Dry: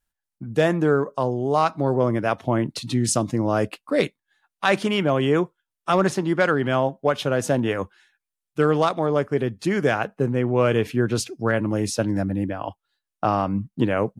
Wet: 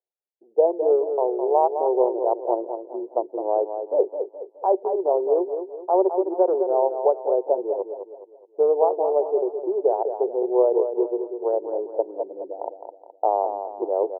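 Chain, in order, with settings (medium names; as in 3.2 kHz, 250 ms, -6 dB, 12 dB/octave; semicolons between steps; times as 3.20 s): local Wiener filter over 41 samples; Chebyshev band-pass 370–930 Hz, order 4; on a send: feedback delay 210 ms, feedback 40%, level -8 dB; on the sum: trim +4 dB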